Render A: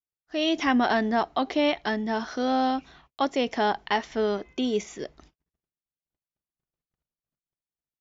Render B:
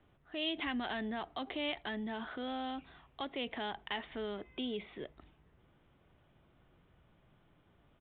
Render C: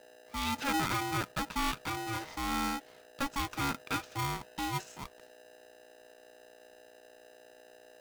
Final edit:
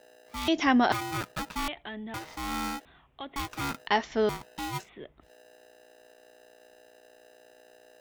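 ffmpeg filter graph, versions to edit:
-filter_complex "[0:a]asplit=2[s0][s1];[1:a]asplit=3[s2][s3][s4];[2:a]asplit=6[s5][s6][s7][s8][s9][s10];[s5]atrim=end=0.482[s11];[s0]atrim=start=0.478:end=0.922[s12];[s6]atrim=start=0.918:end=1.682[s13];[s2]atrim=start=1.678:end=2.142[s14];[s7]atrim=start=2.138:end=2.852[s15];[s3]atrim=start=2.848:end=3.362[s16];[s8]atrim=start=3.358:end=3.872[s17];[s1]atrim=start=3.868:end=4.292[s18];[s9]atrim=start=4.288:end=4.9[s19];[s4]atrim=start=4.8:end=5.31[s20];[s10]atrim=start=5.21[s21];[s11][s12]acrossfade=d=0.004:c1=hsin:c2=hsin[s22];[s22][s13]acrossfade=d=0.004:c1=hsin:c2=hsin[s23];[s23][s14]acrossfade=d=0.004:c1=hsin:c2=hsin[s24];[s24][s15]acrossfade=d=0.004:c1=hsin:c2=hsin[s25];[s25][s16]acrossfade=d=0.004:c1=hsin:c2=hsin[s26];[s26][s17]acrossfade=d=0.004:c1=hsin:c2=hsin[s27];[s27][s18]acrossfade=d=0.004:c1=hsin:c2=hsin[s28];[s28][s19]acrossfade=d=0.004:c1=hsin:c2=hsin[s29];[s29][s20]acrossfade=d=0.1:c1=tri:c2=tri[s30];[s30][s21]acrossfade=d=0.1:c1=tri:c2=tri"

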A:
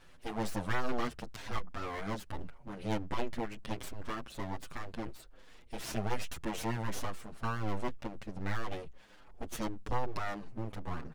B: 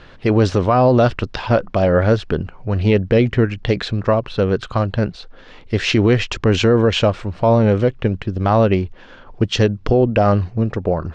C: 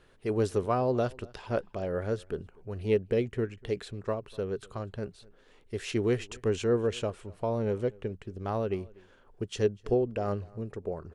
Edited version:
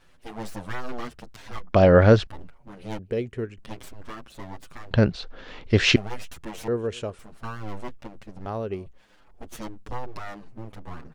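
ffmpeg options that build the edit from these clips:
-filter_complex "[1:a]asplit=2[s0][s1];[2:a]asplit=3[s2][s3][s4];[0:a]asplit=6[s5][s6][s7][s8][s9][s10];[s5]atrim=end=1.732[s11];[s0]atrim=start=1.728:end=2.272[s12];[s6]atrim=start=2.268:end=2.992[s13];[s2]atrim=start=2.988:end=3.582[s14];[s7]atrim=start=3.578:end=4.912[s15];[s1]atrim=start=4.908:end=5.962[s16];[s8]atrim=start=5.958:end=6.682[s17];[s3]atrim=start=6.678:end=7.192[s18];[s9]atrim=start=7.188:end=8.462[s19];[s4]atrim=start=8.458:end=8.862[s20];[s10]atrim=start=8.858[s21];[s11][s12]acrossfade=d=0.004:c1=hsin:c2=hsin[s22];[s22][s13]acrossfade=d=0.004:c1=hsin:c2=hsin[s23];[s23][s14]acrossfade=d=0.004:c1=hsin:c2=hsin[s24];[s24][s15]acrossfade=d=0.004:c1=hsin:c2=hsin[s25];[s25][s16]acrossfade=d=0.004:c1=hsin:c2=hsin[s26];[s26][s17]acrossfade=d=0.004:c1=hsin:c2=hsin[s27];[s27][s18]acrossfade=d=0.004:c1=hsin:c2=hsin[s28];[s28][s19]acrossfade=d=0.004:c1=hsin:c2=hsin[s29];[s29][s20]acrossfade=d=0.004:c1=hsin:c2=hsin[s30];[s30][s21]acrossfade=d=0.004:c1=hsin:c2=hsin"

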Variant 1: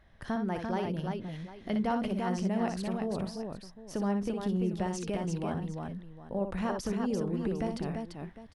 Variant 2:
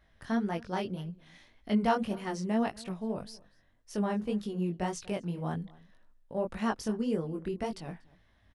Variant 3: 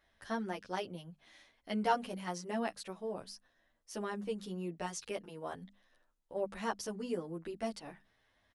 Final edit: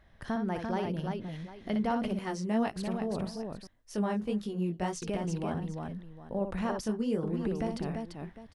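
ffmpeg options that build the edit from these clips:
-filter_complex "[1:a]asplit=3[s0][s1][s2];[0:a]asplit=4[s3][s4][s5][s6];[s3]atrim=end=2.192[s7];[s0]atrim=start=2.188:end=2.762[s8];[s4]atrim=start=2.758:end=3.672[s9];[s1]atrim=start=3.668:end=5.022[s10];[s5]atrim=start=5.018:end=6.832[s11];[s2]atrim=start=6.828:end=7.232[s12];[s6]atrim=start=7.228[s13];[s7][s8]acrossfade=d=0.004:c1=hsin:c2=hsin[s14];[s14][s9]acrossfade=d=0.004:c1=hsin:c2=hsin[s15];[s15][s10]acrossfade=d=0.004:c1=hsin:c2=hsin[s16];[s16][s11]acrossfade=d=0.004:c1=hsin:c2=hsin[s17];[s17][s12]acrossfade=d=0.004:c1=hsin:c2=hsin[s18];[s18][s13]acrossfade=d=0.004:c1=hsin:c2=hsin"

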